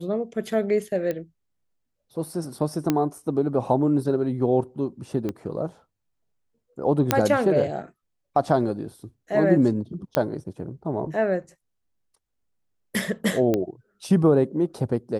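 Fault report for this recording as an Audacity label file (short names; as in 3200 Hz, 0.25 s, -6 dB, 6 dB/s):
1.110000	1.110000	pop -16 dBFS
2.900000	2.900000	pop -8 dBFS
5.290000	5.290000	pop -17 dBFS
7.110000	7.110000	pop -2 dBFS
10.150000	10.150000	pop -8 dBFS
13.540000	13.540000	pop -11 dBFS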